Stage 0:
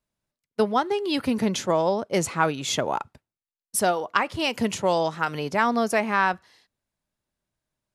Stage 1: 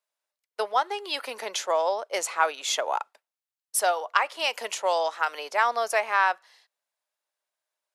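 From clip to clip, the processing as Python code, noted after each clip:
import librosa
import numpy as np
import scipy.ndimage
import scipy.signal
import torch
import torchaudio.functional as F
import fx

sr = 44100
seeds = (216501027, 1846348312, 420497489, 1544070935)

y = scipy.signal.sosfilt(scipy.signal.butter(4, 550.0, 'highpass', fs=sr, output='sos'), x)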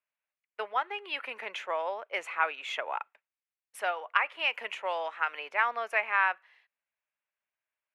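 y = fx.curve_eq(x, sr, hz=(120.0, 250.0, 710.0, 2500.0, 4800.0), db=(0, -5, -6, 5, -20))
y = F.gain(torch.from_numpy(y), -3.0).numpy()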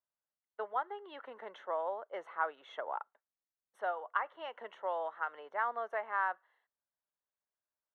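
y = scipy.signal.lfilter(np.full(18, 1.0 / 18), 1.0, x)
y = F.gain(torch.from_numpy(y), -2.0).numpy()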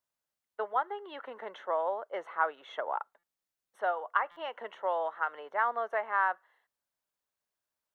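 y = fx.buffer_glitch(x, sr, at_s=(3.18, 4.31), block=256, repeats=8)
y = F.gain(torch.from_numpy(y), 5.0).numpy()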